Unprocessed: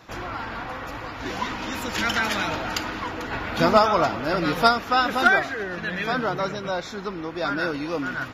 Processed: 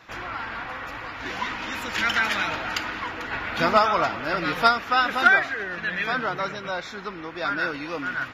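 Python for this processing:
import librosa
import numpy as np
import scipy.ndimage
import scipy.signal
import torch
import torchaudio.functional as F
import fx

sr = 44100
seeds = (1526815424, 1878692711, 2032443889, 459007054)

y = fx.peak_eq(x, sr, hz=2000.0, db=9.0, octaves=2.1)
y = F.gain(torch.from_numpy(y), -6.0).numpy()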